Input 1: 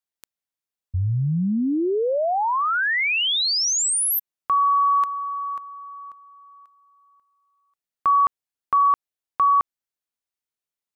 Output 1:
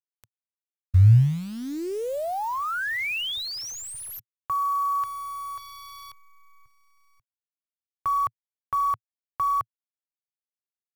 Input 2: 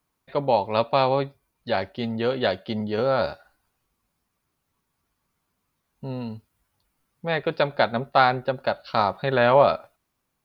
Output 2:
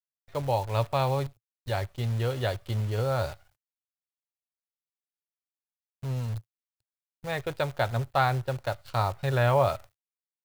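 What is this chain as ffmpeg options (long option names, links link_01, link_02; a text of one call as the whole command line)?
ffmpeg -i in.wav -filter_complex "[0:a]acrossover=split=3400[link_01][link_02];[link_02]acompressor=threshold=-31dB:ratio=4:attack=1:release=60[link_03];[link_01][link_03]amix=inputs=2:normalize=0,acrusher=bits=7:dc=4:mix=0:aa=0.000001,lowshelf=frequency=150:width_type=q:width=3:gain=9,volume=-6.5dB" out.wav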